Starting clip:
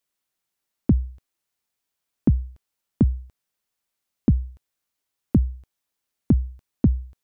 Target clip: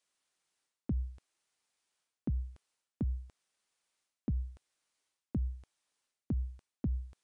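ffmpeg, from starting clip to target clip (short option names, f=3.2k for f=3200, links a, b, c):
-af "lowshelf=f=240:g=-9.5,areverse,acompressor=threshold=-33dB:ratio=12,areverse,volume=2dB" -ar 22050 -c:a aac -b:a 96k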